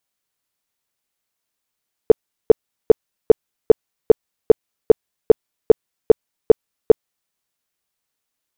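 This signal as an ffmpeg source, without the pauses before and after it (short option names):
-f lavfi -i "aevalsrc='0.841*sin(2*PI*444*mod(t,0.4))*lt(mod(t,0.4),7/444)':d=5.2:s=44100"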